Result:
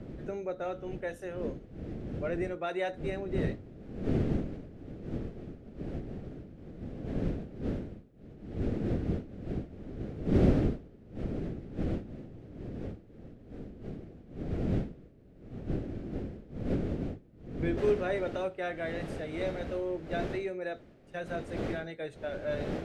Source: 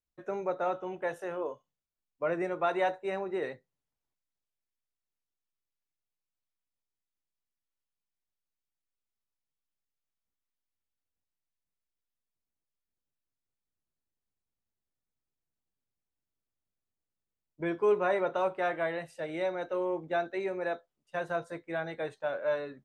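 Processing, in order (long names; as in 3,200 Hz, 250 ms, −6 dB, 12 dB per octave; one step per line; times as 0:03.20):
wind on the microphone 330 Hz −35 dBFS, from 0:17.77 630 Hz
parametric band 990 Hz −14.5 dB 0.86 octaves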